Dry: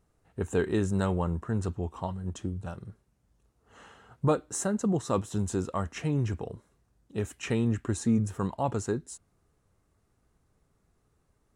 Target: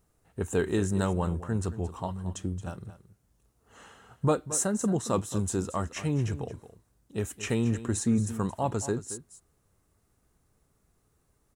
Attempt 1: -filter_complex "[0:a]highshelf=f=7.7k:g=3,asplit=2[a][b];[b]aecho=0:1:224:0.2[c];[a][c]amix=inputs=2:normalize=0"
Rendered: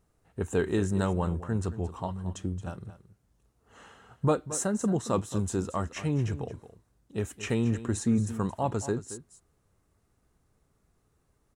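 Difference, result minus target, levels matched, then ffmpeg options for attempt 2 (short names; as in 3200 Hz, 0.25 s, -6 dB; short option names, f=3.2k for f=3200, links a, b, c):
8000 Hz band -3.5 dB
-filter_complex "[0:a]highshelf=f=7.7k:g=11,asplit=2[a][b];[b]aecho=0:1:224:0.2[c];[a][c]amix=inputs=2:normalize=0"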